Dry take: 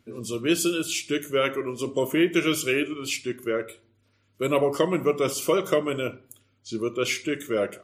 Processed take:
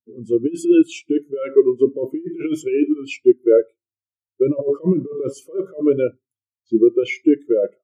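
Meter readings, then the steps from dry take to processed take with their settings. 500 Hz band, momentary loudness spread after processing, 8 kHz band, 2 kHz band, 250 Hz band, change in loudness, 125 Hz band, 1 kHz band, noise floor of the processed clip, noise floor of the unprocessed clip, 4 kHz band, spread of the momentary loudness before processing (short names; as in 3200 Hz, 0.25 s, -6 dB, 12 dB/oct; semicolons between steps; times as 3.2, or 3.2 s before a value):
+7.5 dB, 11 LU, under -10 dB, -5.0 dB, +9.0 dB, +6.5 dB, +3.5 dB, under -10 dB, under -85 dBFS, -67 dBFS, n/a, 8 LU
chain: negative-ratio compressor -25 dBFS, ratio -0.5; maximiser +14.5 dB; spectral expander 2.5:1; gain -1 dB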